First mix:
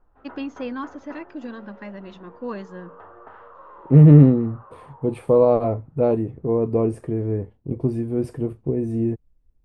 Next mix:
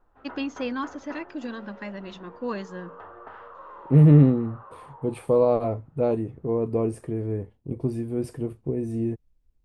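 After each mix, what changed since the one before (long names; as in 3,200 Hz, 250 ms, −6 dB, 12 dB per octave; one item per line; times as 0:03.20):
second voice −4.5 dB
master: add high-shelf EQ 2,700 Hz +8.5 dB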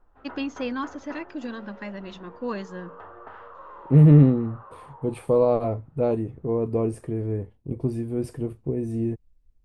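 master: add low-shelf EQ 67 Hz +6 dB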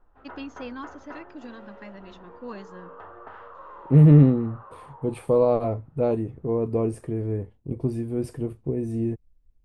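first voice −7.5 dB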